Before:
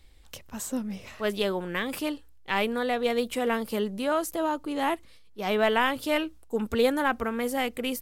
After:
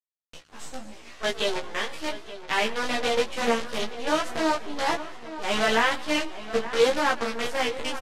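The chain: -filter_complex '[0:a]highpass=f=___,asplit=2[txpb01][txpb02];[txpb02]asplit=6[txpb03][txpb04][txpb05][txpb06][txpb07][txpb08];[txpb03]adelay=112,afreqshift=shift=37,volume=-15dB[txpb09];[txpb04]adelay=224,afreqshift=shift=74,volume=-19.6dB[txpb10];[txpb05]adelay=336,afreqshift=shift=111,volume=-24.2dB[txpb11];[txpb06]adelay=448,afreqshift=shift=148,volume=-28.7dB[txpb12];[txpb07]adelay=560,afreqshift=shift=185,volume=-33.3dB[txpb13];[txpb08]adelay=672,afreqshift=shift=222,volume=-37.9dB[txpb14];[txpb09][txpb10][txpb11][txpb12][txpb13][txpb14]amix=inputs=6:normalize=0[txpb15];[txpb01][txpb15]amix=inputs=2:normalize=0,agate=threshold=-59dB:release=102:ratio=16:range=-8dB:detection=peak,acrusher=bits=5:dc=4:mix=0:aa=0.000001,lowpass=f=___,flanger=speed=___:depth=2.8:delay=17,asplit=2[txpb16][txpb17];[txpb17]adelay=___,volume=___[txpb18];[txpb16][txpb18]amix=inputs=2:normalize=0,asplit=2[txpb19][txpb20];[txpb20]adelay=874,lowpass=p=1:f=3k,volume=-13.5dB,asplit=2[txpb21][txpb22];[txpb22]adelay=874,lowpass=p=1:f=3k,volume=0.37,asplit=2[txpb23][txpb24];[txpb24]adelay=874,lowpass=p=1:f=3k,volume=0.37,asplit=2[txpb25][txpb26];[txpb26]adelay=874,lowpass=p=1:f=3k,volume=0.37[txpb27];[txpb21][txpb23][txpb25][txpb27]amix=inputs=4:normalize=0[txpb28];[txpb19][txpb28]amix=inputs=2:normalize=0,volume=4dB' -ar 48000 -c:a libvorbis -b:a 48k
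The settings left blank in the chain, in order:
370, 5.9k, 0.83, 13, -3dB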